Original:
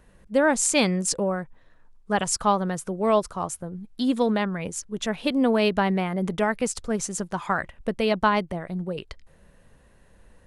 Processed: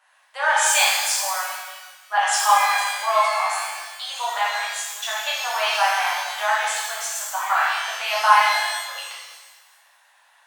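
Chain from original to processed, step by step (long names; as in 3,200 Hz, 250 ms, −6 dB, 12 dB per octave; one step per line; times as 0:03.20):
Butterworth high-pass 730 Hz 48 dB per octave
high-shelf EQ 8,700 Hz −9 dB
reverb with rising layers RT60 1.3 s, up +12 semitones, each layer −8 dB, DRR −7.5 dB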